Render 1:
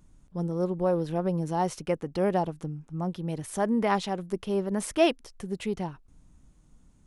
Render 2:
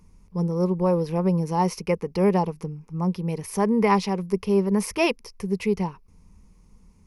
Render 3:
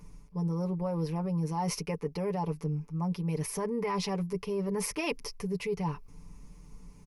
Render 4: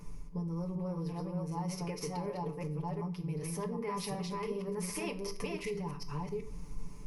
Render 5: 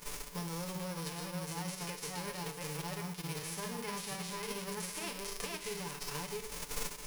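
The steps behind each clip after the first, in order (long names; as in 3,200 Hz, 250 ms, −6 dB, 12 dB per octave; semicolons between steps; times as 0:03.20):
EQ curve with evenly spaced ripples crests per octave 0.84, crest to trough 11 dB; level +3 dB
brickwall limiter −17.5 dBFS, peak gain reduction 10 dB; comb filter 6.9 ms, depth 72%; reversed playback; downward compressor 4 to 1, threshold −33 dBFS, peak gain reduction 12 dB; reversed playback; level +2.5 dB
delay that plays each chunk backwards 377 ms, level −2.5 dB; downward compressor 6 to 1, threshold −38 dBFS, peak gain reduction 13.5 dB; rectangular room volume 58 cubic metres, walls mixed, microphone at 0.31 metres; level +2 dB
spectral envelope flattened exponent 0.3; level −3.5 dB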